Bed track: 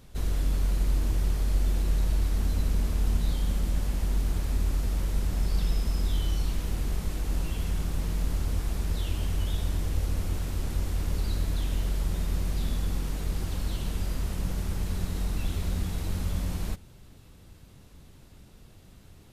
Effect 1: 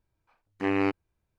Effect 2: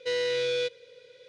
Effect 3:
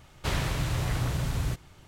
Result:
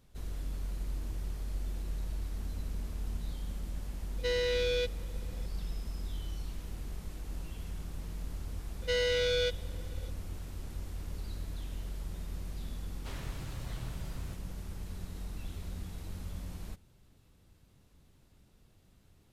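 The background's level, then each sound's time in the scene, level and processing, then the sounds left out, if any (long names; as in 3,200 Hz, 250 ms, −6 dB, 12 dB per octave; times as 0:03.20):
bed track −11.5 dB
0:04.18: mix in 2 −3 dB
0:08.82: mix in 2 −2.5 dB + comb filter 1.4 ms, depth 92%
0:12.81: mix in 3 −15.5 dB
not used: 1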